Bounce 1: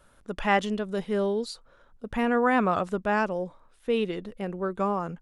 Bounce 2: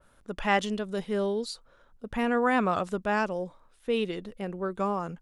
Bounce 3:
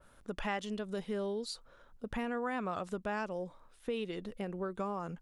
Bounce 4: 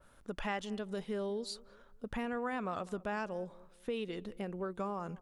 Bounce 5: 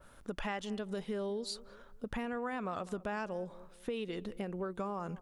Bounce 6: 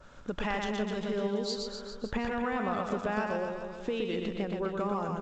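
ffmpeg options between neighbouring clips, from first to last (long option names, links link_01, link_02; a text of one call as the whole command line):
ffmpeg -i in.wav -af "adynamicequalizer=threshold=0.0112:dfrequency=2800:dqfactor=0.7:tfrequency=2800:tqfactor=0.7:attack=5:release=100:ratio=0.375:range=2.5:mode=boostabove:tftype=highshelf,volume=-2dB" out.wav
ffmpeg -i in.wav -af "acompressor=threshold=-36dB:ratio=3" out.wav
ffmpeg -i in.wav -filter_complex "[0:a]asplit=2[link_01][link_02];[link_02]adelay=200,lowpass=frequency=940:poles=1,volume=-19dB,asplit=2[link_03][link_04];[link_04]adelay=200,lowpass=frequency=940:poles=1,volume=0.37,asplit=2[link_05][link_06];[link_06]adelay=200,lowpass=frequency=940:poles=1,volume=0.37[link_07];[link_01][link_03][link_05][link_07]amix=inputs=4:normalize=0,volume=-1dB" out.wav
ffmpeg -i in.wav -af "acompressor=threshold=-42dB:ratio=2,volume=4.5dB" out.wav
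ffmpeg -i in.wav -af "aecho=1:1:120|252|397.2|556.9|732.6:0.631|0.398|0.251|0.158|0.1,volume=4.5dB" -ar 16000 -c:a g722 out.g722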